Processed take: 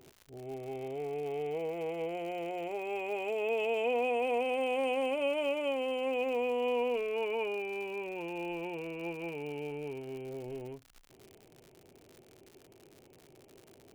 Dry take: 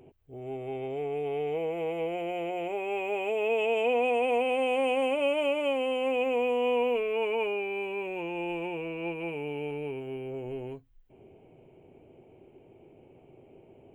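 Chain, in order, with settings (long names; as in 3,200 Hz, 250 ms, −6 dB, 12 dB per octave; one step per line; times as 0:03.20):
surface crackle 120 per second −38 dBFS
level −4.5 dB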